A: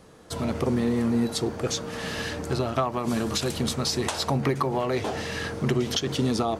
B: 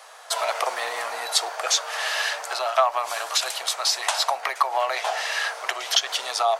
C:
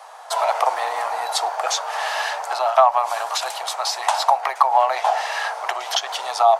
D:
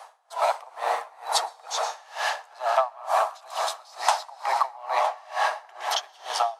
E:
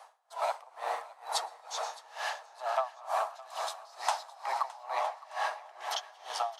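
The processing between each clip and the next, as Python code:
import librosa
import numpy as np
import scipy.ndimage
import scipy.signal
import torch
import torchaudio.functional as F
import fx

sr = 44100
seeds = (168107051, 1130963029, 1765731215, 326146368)

y1 = scipy.signal.sosfilt(scipy.signal.ellip(4, 1.0, 80, 660.0, 'highpass', fs=sr, output='sos'), x)
y1 = fx.rider(y1, sr, range_db=4, speed_s=2.0)
y1 = F.gain(torch.from_numpy(y1), 8.0).numpy()
y2 = fx.peak_eq(y1, sr, hz=840.0, db=13.5, octaves=0.98)
y2 = F.gain(torch.from_numpy(y2), -3.0).numpy()
y3 = fx.rev_plate(y2, sr, seeds[0], rt60_s=4.2, hf_ratio=0.5, predelay_ms=105, drr_db=3.0)
y3 = y3 * 10.0 ** (-28 * (0.5 - 0.5 * np.cos(2.0 * np.pi * 2.2 * np.arange(len(y3)) / sr)) / 20.0)
y3 = F.gain(torch.from_numpy(y3), -1.5).numpy()
y4 = fx.echo_feedback(y3, sr, ms=614, feedback_pct=43, wet_db=-20)
y4 = F.gain(torch.from_numpy(y4), -8.5).numpy()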